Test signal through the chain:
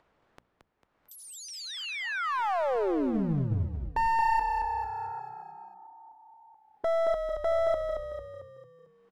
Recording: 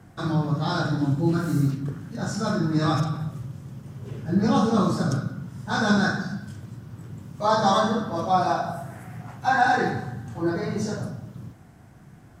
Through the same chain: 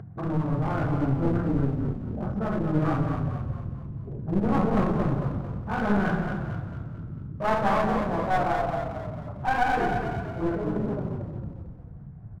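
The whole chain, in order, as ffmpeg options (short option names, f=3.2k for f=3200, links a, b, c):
-filter_complex "[0:a]afwtdn=0.0178,lowpass=1.2k,bandreject=f=60:t=h:w=6,bandreject=f=120:t=h:w=6,bandreject=f=180:t=h:w=6,bandreject=f=240:t=h:w=6,acompressor=mode=upward:threshold=-32dB:ratio=2.5,aeval=exprs='clip(val(0),-1,0.0376)':c=same,asplit=7[a][b][c][d][e][f][g];[b]adelay=224,afreqshift=-32,volume=-6dB[h];[c]adelay=448,afreqshift=-64,volume=-12dB[i];[d]adelay=672,afreqshift=-96,volume=-18dB[j];[e]adelay=896,afreqshift=-128,volume=-24.1dB[k];[f]adelay=1120,afreqshift=-160,volume=-30.1dB[l];[g]adelay=1344,afreqshift=-192,volume=-36.1dB[m];[a][h][i][j][k][l][m]amix=inputs=7:normalize=0"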